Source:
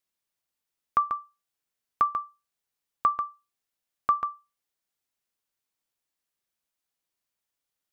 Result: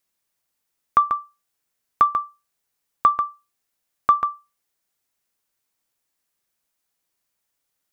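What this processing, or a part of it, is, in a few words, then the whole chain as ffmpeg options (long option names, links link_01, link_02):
exciter from parts: -filter_complex "[0:a]asplit=2[link_01][link_02];[link_02]highpass=frequency=2500:poles=1,asoftclip=type=tanh:threshold=-30.5dB,highpass=frequency=2500:width=0.5412,highpass=frequency=2500:width=1.3066,volume=-12dB[link_03];[link_01][link_03]amix=inputs=2:normalize=0,volume=7dB"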